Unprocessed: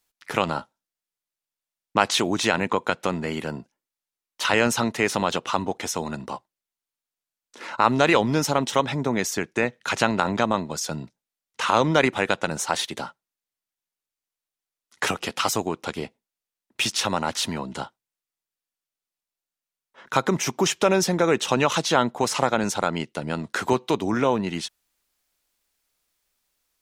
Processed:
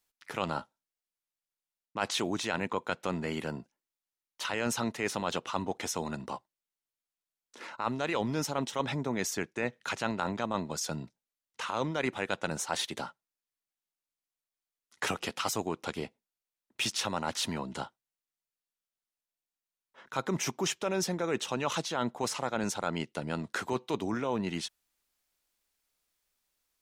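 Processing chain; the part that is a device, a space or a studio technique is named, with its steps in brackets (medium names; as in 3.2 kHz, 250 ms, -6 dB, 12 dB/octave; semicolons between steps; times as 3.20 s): compression on the reversed sound (reverse; compression 12:1, threshold -21 dBFS, peak gain reduction 10.5 dB; reverse); trim -5.5 dB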